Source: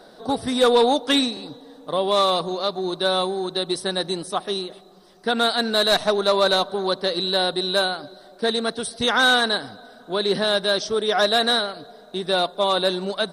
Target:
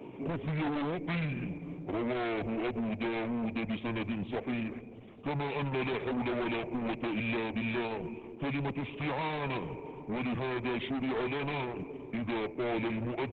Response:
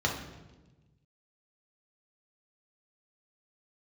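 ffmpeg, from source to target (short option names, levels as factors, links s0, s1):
-filter_complex "[0:a]lowpass=f=1800:p=1,acrossover=split=170|890[s0][s1][s2];[s0]aeval=exprs='(mod(37.6*val(0)+1,2)-1)/37.6':c=same[s3];[s3][s1][s2]amix=inputs=3:normalize=0,asetrate=26990,aresample=44100,atempo=1.63392,acompressor=threshold=0.0355:ratio=2,highpass=f=96:w=0.5412,highpass=f=96:w=1.3066,aresample=8000,asoftclip=type=tanh:threshold=0.0224,aresample=44100,volume=1.58" -ar 48000 -c:a libopus -b:a 10k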